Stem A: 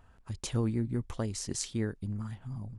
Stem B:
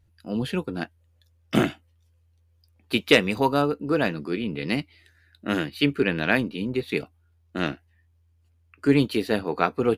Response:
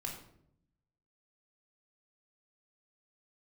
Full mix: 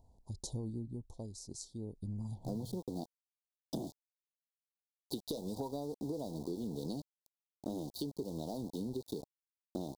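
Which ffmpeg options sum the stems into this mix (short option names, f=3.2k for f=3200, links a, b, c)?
-filter_complex "[0:a]volume=6.5dB,afade=t=out:st=0.7:d=0.3:silence=0.446684,afade=t=in:st=1.82:d=0.44:silence=0.281838[a];[1:a]asoftclip=type=tanh:threshold=-10dB,acompressor=threshold=-25dB:ratio=16,aeval=exprs='val(0)*gte(abs(val(0)),0.0133)':c=same,adelay=2200,volume=-2dB[b];[a][b]amix=inputs=2:normalize=0,asuperstop=centerf=1900:order=12:qfactor=0.65,acompressor=threshold=-36dB:ratio=6"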